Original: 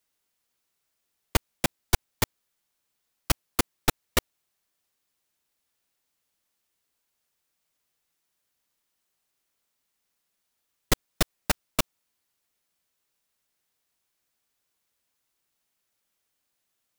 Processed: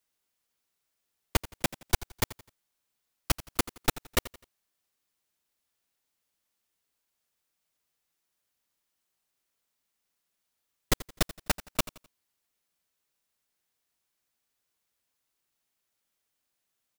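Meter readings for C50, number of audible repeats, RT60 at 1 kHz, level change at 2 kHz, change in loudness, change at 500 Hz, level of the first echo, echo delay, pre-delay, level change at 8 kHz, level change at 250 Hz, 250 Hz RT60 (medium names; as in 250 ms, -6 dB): no reverb, 2, no reverb, -3.0 dB, -3.0 dB, -3.0 dB, -17.0 dB, 85 ms, no reverb, -3.0 dB, -3.0 dB, no reverb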